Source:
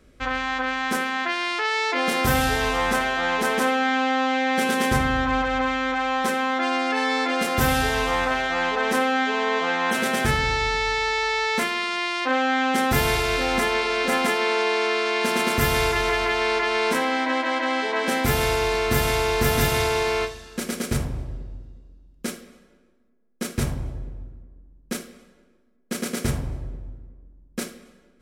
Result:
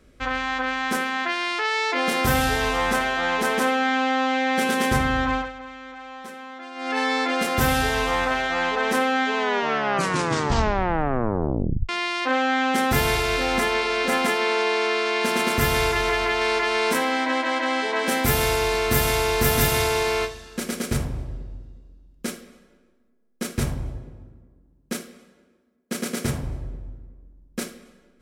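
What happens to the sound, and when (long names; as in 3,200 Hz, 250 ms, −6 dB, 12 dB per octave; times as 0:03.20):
0:05.30–0:06.98: duck −15 dB, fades 0.23 s
0:09.37: tape stop 2.52 s
0:16.41–0:20.27: high-shelf EQ 8,500 Hz +7.5 dB
0:23.98–0:26.43: high-pass filter 78 Hz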